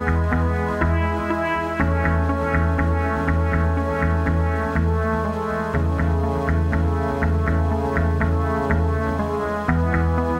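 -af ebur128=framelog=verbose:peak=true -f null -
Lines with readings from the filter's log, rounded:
Integrated loudness:
  I:         -21.3 LUFS
  Threshold: -31.3 LUFS
Loudness range:
  LRA:         0.8 LU
  Threshold: -41.3 LUFS
  LRA low:   -21.7 LUFS
  LRA high:  -20.9 LUFS
True peak:
  Peak:       -5.5 dBFS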